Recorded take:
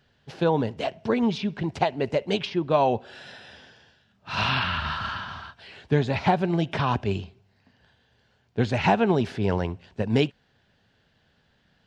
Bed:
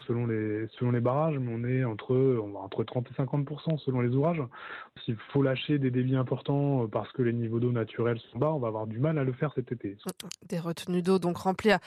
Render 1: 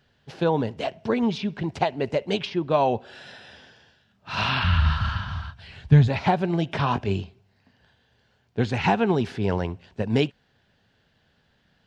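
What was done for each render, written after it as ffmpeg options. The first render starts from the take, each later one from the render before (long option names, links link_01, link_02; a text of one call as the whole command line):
ffmpeg -i in.wav -filter_complex "[0:a]asplit=3[link_01][link_02][link_03];[link_01]afade=type=out:start_time=4.62:duration=0.02[link_04];[link_02]asubboost=boost=11:cutoff=110,afade=type=in:start_time=4.62:duration=0.02,afade=type=out:start_time=6.07:duration=0.02[link_05];[link_03]afade=type=in:start_time=6.07:duration=0.02[link_06];[link_04][link_05][link_06]amix=inputs=3:normalize=0,asettb=1/sr,asplit=3[link_07][link_08][link_09];[link_07]atrim=end=6.784[link_10];[link_08]atrim=start=6.78:end=7.23,asetpts=PTS-STARTPTS,afade=type=in:duration=0.004:curve=qsin,afade=type=out:start_time=0.446:duration=0.004:curve=qsin,asplit=2[link_11][link_12];[link_12]adelay=21,volume=-8.5dB[link_13];[link_11][link_13]amix=inputs=2:normalize=0,atrim=end_sample=19845[link_14];[link_09]atrim=start=7.226[link_15];[link_10][link_14]acrossfade=duration=0.004:curve1=hsin:curve2=qsin[link_16];[link_16][link_15]acrossfade=duration=0.004:curve1=qsin:curve2=hsin,asettb=1/sr,asplit=3[link_17][link_18][link_19];[link_17]atrim=end=8.644[link_20];[link_18]atrim=start=8.64:end=9.43,asetpts=PTS-STARTPTS,afade=type=in:duration=0.004:curve=qsin,afade=type=out:start_time=0.786:duration=0.004:curve=qsin,bandreject=frequency=610:width=5.8[link_21];[link_19]atrim=start=9.426[link_22];[link_20][link_21]acrossfade=duration=0.004:curve1=hsin:curve2=qsin[link_23];[link_23][link_22]acrossfade=duration=0.004:curve1=qsin:curve2=hsin" out.wav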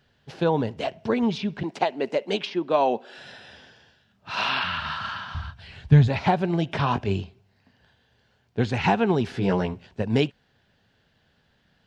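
ffmpeg -i in.wav -filter_complex "[0:a]asettb=1/sr,asplit=3[link_01][link_02][link_03];[link_01]atrim=end=1.634[link_04];[link_02]atrim=start=1.63:end=3.18,asetpts=PTS-STARTPTS,afade=type=in:duration=0.004:curve=qsin,afade=type=out:start_time=1.546:duration=0.004:curve=qsin,highpass=frequency=210:width=0.5412,highpass=frequency=210:width=1.3066[link_05];[link_03]atrim=start=3.176[link_06];[link_04][link_05]acrossfade=duration=0.004:curve1=hsin:curve2=qsin[link_07];[link_07][link_06]acrossfade=duration=0.004:curve1=qsin:curve2=hsin,asettb=1/sr,asplit=3[link_08][link_09][link_10];[link_08]atrim=end=4.314[link_11];[link_09]atrim=start=4.31:end=5.35,asetpts=PTS-STARTPTS,afade=type=in:duration=0.004:curve=qsin,afade=type=out:start_time=1.036:duration=0.004:curve=qsin,highpass=320[link_12];[link_10]atrim=start=5.346[link_13];[link_11][link_12]acrossfade=duration=0.004:curve1=hsin:curve2=qsin[link_14];[link_14][link_13]acrossfade=duration=0.004:curve1=qsin:curve2=hsin,asettb=1/sr,asplit=3[link_15][link_16][link_17];[link_15]atrim=end=9.324[link_18];[link_16]atrim=start=9.32:end=9.87,asetpts=PTS-STARTPTS,afade=type=in:duration=0.004:curve=qsin,afade=type=out:start_time=0.546:duration=0.004:curve=qsin,asplit=2[link_19][link_20];[link_20]adelay=16,volume=-2dB[link_21];[link_19][link_21]amix=inputs=2:normalize=0,atrim=end_sample=24255[link_22];[link_17]atrim=start=9.866[link_23];[link_18][link_22]acrossfade=duration=0.004:curve1=hsin:curve2=qsin[link_24];[link_24][link_23]acrossfade=duration=0.004:curve1=qsin:curve2=hsin" out.wav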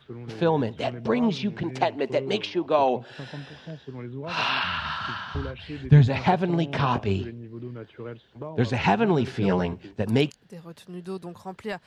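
ffmpeg -i in.wav -i bed.wav -filter_complex "[1:a]volume=-9.5dB[link_01];[0:a][link_01]amix=inputs=2:normalize=0" out.wav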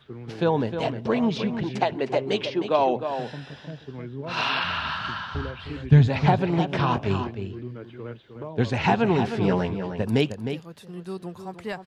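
ffmpeg -i in.wav -filter_complex "[0:a]asplit=2[link_01][link_02];[link_02]adelay=309,volume=-8dB,highshelf=frequency=4000:gain=-6.95[link_03];[link_01][link_03]amix=inputs=2:normalize=0" out.wav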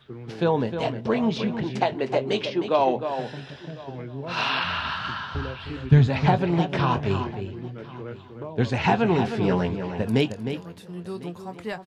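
ffmpeg -i in.wav -filter_complex "[0:a]asplit=2[link_01][link_02];[link_02]adelay=23,volume=-12.5dB[link_03];[link_01][link_03]amix=inputs=2:normalize=0,aecho=1:1:1051:0.0891" out.wav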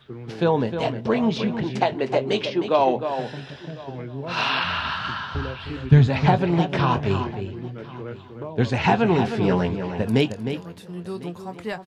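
ffmpeg -i in.wav -af "volume=2dB" out.wav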